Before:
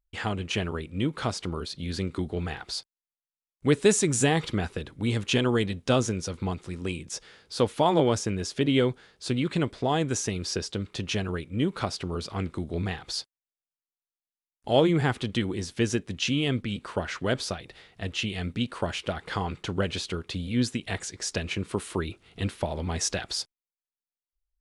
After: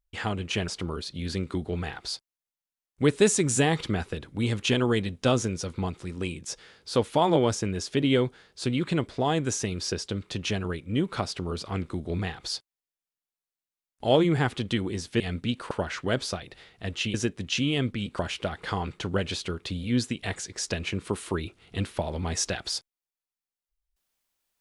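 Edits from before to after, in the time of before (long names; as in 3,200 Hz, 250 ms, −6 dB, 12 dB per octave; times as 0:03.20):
0:00.68–0:01.32: remove
0:15.84–0:16.89: swap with 0:18.32–0:18.83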